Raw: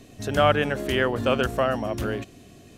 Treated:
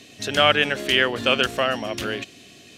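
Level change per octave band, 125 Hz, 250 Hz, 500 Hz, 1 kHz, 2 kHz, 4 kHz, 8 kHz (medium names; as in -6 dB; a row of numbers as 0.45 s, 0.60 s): -6.0 dB, -1.5 dB, -0.5 dB, +1.0 dB, +6.5 dB, +11.5 dB, +6.5 dB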